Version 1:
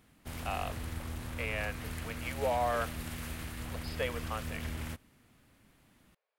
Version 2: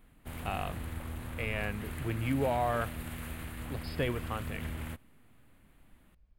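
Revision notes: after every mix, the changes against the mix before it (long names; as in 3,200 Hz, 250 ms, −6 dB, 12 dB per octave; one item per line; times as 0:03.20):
speech: remove Butterworth high-pass 430 Hz 72 dB per octave
background: add parametric band 5,500 Hz −12.5 dB 0.76 octaves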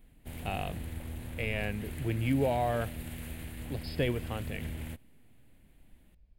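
speech +3.0 dB
master: add parametric band 1,200 Hz −11 dB 0.81 octaves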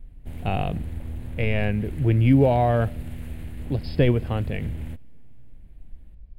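speech +7.5 dB
master: add spectral tilt −2 dB per octave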